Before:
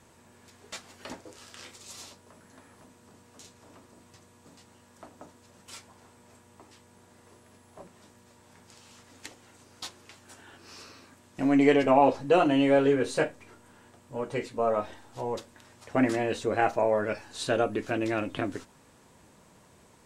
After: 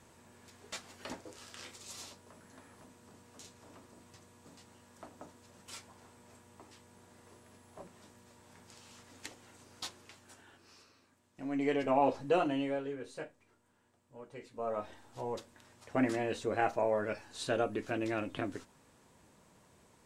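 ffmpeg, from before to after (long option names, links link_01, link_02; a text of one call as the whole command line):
ffmpeg -i in.wav -af "volume=17.5dB,afade=type=out:start_time=9.84:duration=1.02:silence=0.237137,afade=type=in:start_time=11.43:duration=0.8:silence=0.354813,afade=type=out:start_time=12.23:duration=0.61:silence=0.281838,afade=type=in:start_time=14.38:duration=0.67:silence=0.281838" out.wav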